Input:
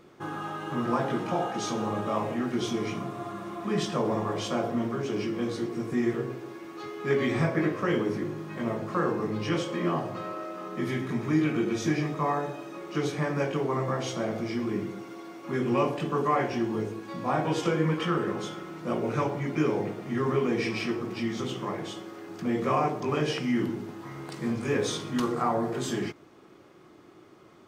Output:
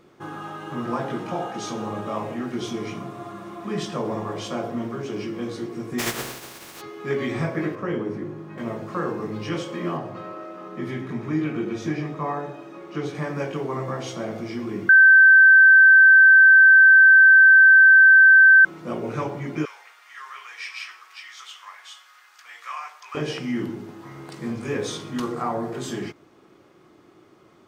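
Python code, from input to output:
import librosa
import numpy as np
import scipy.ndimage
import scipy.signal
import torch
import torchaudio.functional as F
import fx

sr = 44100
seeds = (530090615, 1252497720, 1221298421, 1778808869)

y = fx.spec_flatten(x, sr, power=0.33, at=(5.98, 6.8), fade=0.02)
y = fx.high_shelf(y, sr, hz=2500.0, db=-11.0, at=(7.75, 8.58))
y = fx.high_shelf(y, sr, hz=4700.0, db=-9.5, at=(9.97, 13.15))
y = fx.highpass(y, sr, hz=1200.0, slope=24, at=(19.65, 23.15))
y = fx.edit(y, sr, fx.bleep(start_s=14.89, length_s=3.76, hz=1550.0, db=-8.0), tone=tone)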